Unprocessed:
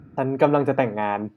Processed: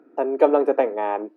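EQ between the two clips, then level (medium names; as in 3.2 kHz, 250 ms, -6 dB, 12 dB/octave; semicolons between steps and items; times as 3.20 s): steep high-pass 330 Hz 36 dB/octave; tilt shelf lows +7.5 dB, about 820 Hz; 0.0 dB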